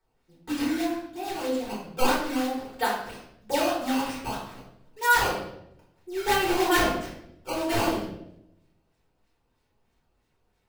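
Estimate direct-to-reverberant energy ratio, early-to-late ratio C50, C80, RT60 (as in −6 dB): −8.0 dB, 3.0 dB, 6.0 dB, 0.80 s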